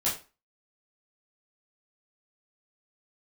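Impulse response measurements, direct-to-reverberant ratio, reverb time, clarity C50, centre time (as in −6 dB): −9.0 dB, 0.30 s, 8.0 dB, 30 ms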